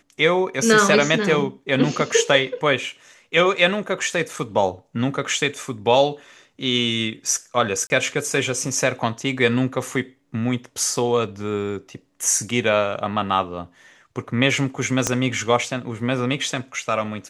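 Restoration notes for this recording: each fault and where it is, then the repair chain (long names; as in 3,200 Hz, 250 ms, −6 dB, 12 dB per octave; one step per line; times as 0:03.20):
0:07.87–0:07.90: drop-out 30 ms
0:15.07: click −5 dBFS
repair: click removal
repair the gap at 0:07.87, 30 ms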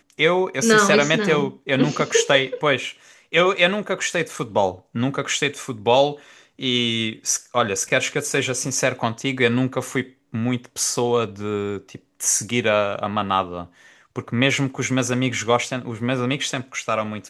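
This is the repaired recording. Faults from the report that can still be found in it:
0:15.07: click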